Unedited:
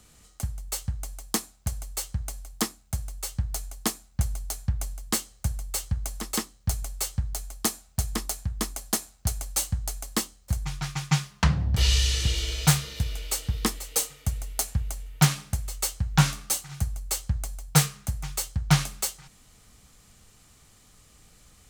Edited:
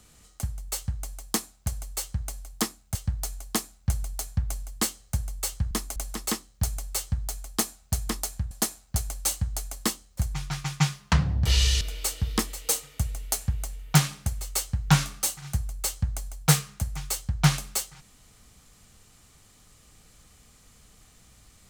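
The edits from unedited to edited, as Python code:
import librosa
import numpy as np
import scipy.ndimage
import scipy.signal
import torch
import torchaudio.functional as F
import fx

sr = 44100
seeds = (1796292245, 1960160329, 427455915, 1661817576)

y = fx.edit(x, sr, fx.cut(start_s=2.95, length_s=0.31),
    fx.move(start_s=8.57, length_s=0.25, to_s=6.02),
    fx.cut(start_s=12.12, length_s=0.96), tone=tone)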